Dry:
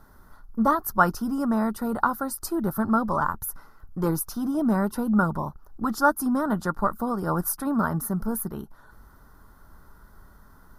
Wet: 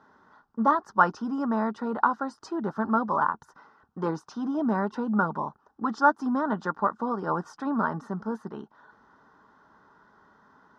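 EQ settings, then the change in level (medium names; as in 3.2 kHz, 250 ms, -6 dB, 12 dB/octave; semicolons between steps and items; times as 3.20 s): distance through air 190 m; cabinet simulation 320–7500 Hz, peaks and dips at 340 Hz -5 dB, 560 Hz -6 dB, 1.3 kHz -5 dB, 2.2 kHz -5 dB, 4.4 kHz -5 dB; band-stop 710 Hz, Q 12; +4.0 dB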